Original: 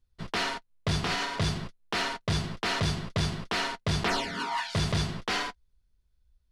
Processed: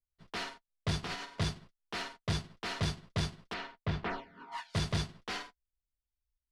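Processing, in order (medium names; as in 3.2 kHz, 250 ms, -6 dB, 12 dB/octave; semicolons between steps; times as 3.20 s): 3.53–4.51 s: low-pass 3.7 kHz -> 1.5 kHz 12 dB/octave; upward expansion 2.5:1, over -37 dBFS; trim -3 dB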